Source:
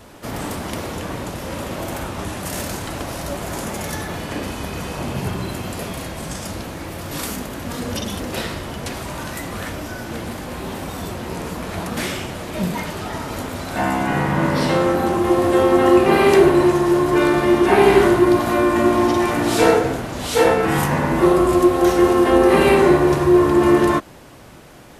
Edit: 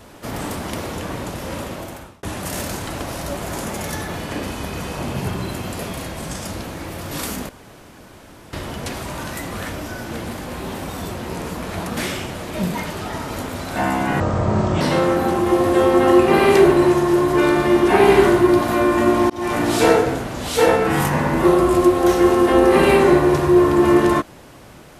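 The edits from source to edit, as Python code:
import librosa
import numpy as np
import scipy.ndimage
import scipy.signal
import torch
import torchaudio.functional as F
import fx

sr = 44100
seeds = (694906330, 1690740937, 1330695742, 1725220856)

y = fx.edit(x, sr, fx.fade_out_span(start_s=1.56, length_s=0.67),
    fx.room_tone_fill(start_s=7.49, length_s=1.04),
    fx.speed_span(start_s=14.2, length_s=0.39, speed=0.64),
    fx.fade_in_span(start_s=19.08, length_s=0.25), tone=tone)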